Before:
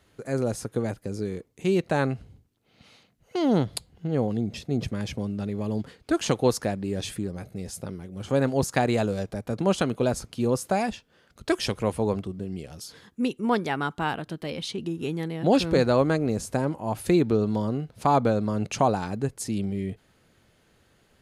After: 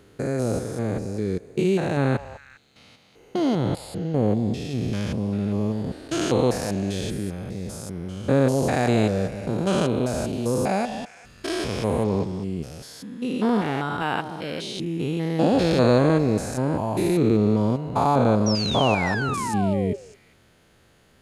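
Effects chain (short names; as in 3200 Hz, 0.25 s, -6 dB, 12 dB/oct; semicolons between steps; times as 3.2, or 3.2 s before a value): stepped spectrum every 0.2 s; 14.02–14.77 HPF 190 Hz 6 dB/oct; 18.46–19.96 painted sound fall 390–5900 Hz -35 dBFS; delay with a stepping band-pass 0.201 s, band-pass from 780 Hz, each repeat 1.4 oct, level -10 dB; gain +6 dB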